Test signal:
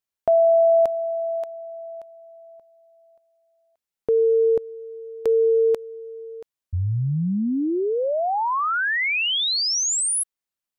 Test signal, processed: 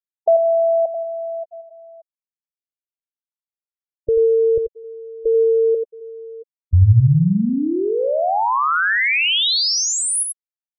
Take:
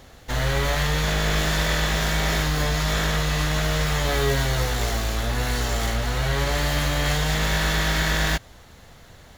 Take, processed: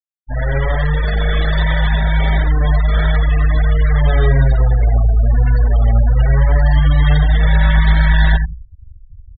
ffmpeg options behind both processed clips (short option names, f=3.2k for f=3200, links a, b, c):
-filter_complex "[0:a]aecho=1:1:88|176|264|352:0.562|0.191|0.065|0.0221,asubboost=boost=3.5:cutoff=130,acrossover=split=7000[a][b];[a]adynamicsmooth=sensitivity=7:basefreq=3.8k[c];[c][b]amix=inputs=2:normalize=0,afftfilt=real='re*gte(hypot(re,im),0.112)':imag='im*gte(hypot(re,im),0.112)':win_size=1024:overlap=0.75,volume=4dB"